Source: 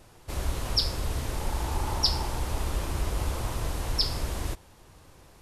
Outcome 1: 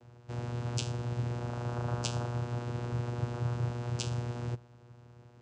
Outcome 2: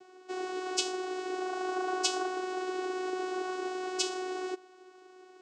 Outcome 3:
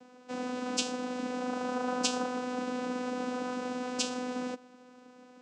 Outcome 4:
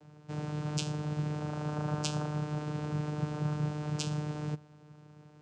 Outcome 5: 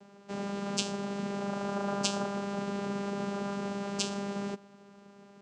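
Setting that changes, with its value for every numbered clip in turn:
vocoder, frequency: 120 Hz, 370 Hz, 250 Hz, 150 Hz, 200 Hz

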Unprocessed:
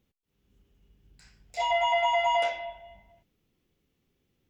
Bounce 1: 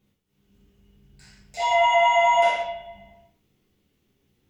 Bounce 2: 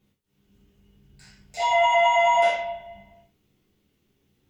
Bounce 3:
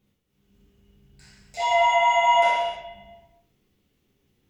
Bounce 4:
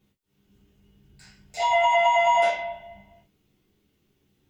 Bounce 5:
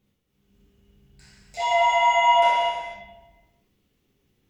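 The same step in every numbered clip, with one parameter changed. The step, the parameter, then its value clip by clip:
gated-style reverb, gate: 210 ms, 130 ms, 340 ms, 80 ms, 520 ms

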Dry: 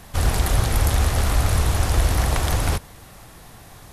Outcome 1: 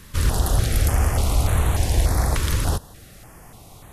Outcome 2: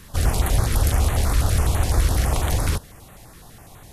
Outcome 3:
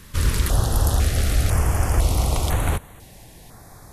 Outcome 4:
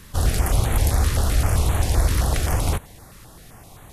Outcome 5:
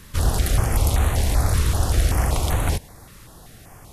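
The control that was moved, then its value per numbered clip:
step-sequenced notch, rate: 3.4 Hz, 12 Hz, 2 Hz, 7.7 Hz, 5.2 Hz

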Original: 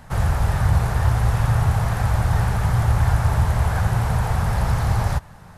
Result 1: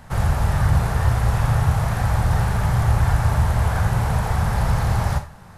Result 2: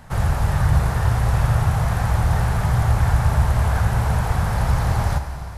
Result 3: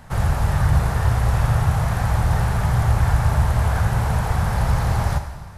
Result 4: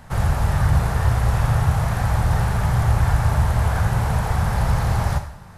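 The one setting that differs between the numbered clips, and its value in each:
Schroeder reverb, RT60: 0.31 s, 3.4 s, 1.4 s, 0.67 s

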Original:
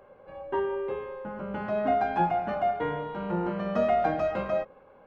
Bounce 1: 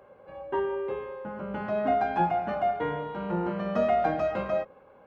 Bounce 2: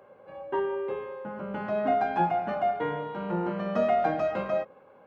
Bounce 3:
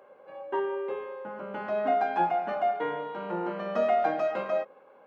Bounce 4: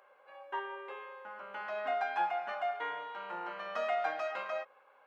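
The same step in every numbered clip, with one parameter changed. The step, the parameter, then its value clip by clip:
high-pass, cutoff frequency: 41 Hz, 110 Hz, 300 Hz, 1.1 kHz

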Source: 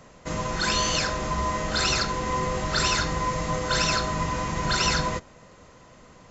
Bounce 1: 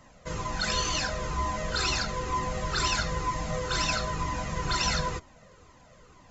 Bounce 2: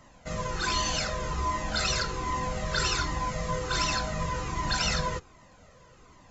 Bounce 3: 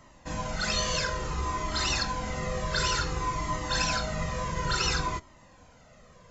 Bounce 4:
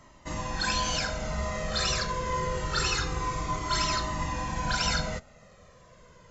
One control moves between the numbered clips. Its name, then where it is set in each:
Shepard-style flanger, rate: 2.1 Hz, 1.3 Hz, 0.57 Hz, 0.26 Hz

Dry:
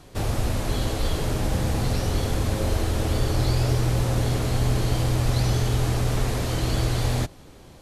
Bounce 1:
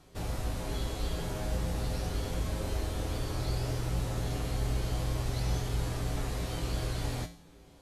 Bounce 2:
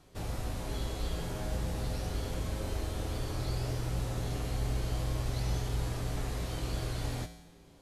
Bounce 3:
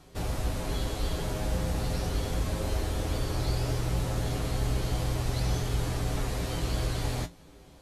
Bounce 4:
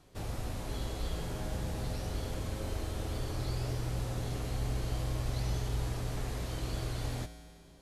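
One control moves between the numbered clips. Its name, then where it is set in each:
feedback comb, decay: 0.48 s, 1 s, 0.16 s, 2.2 s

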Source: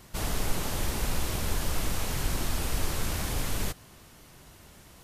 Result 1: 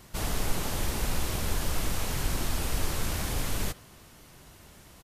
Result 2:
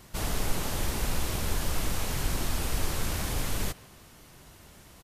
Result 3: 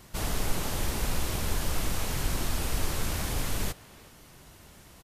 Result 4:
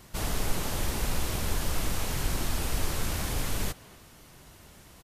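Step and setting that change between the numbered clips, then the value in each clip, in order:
speakerphone echo, time: 80 ms, 150 ms, 370 ms, 240 ms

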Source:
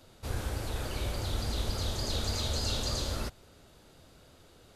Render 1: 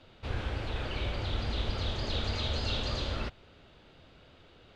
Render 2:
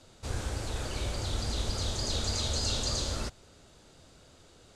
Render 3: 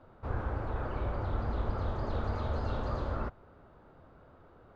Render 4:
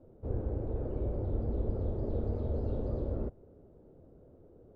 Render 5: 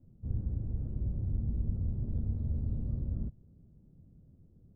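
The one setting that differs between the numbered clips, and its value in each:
resonant low-pass, frequency: 3 kHz, 7.7 kHz, 1.2 kHz, 450 Hz, 180 Hz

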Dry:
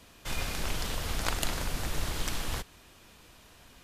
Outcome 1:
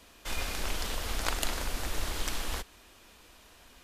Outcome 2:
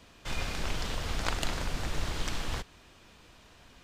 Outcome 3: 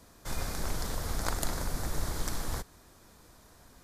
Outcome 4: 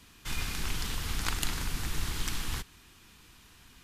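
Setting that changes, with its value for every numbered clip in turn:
peaking EQ, frequency: 130 Hz, 12 kHz, 2.8 kHz, 590 Hz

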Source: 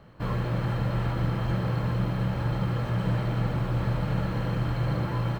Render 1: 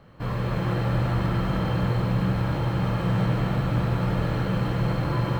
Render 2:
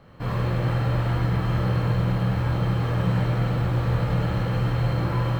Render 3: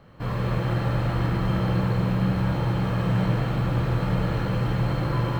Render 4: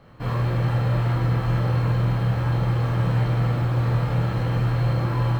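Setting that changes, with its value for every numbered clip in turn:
gated-style reverb, gate: 430 ms, 150 ms, 290 ms, 90 ms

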